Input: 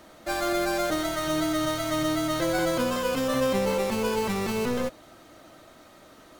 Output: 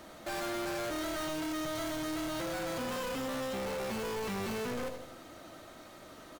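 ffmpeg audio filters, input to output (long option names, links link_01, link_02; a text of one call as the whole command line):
ffmpeg -i in.wav -af "alimiter=limit=-21.5dB:level=0:latency=1:release=157,aecho=1:1:80|160|240|320|400:0.237|0.119|0.0593|0.0296|0.0148,volume=34.5dB,asoftclip=hard,volume=-34.5dB" out.wav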